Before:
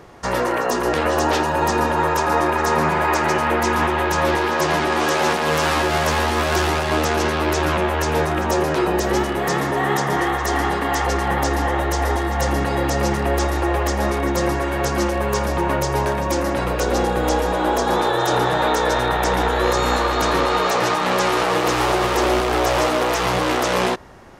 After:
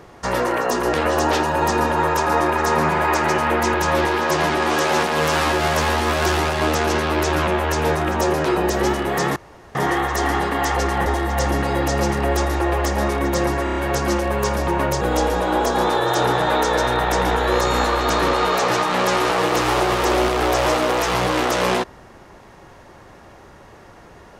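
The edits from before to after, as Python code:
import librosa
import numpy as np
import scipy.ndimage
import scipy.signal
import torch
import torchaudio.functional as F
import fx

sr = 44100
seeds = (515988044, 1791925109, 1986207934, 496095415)

y = fx.edit(x, sr, fx.cut(start_s=3.74, length_s=0.3),
    fx.room_tone_fill(start_s=9.66, length_s=0.39),
    fx.cut(start_s=11.36, length_s=0.72),
    fx.stutter(start_s=14.66, slice_s=0.03, count=5),
    fx.cut(start_s=15.91, length_s=1.22), tone=tone)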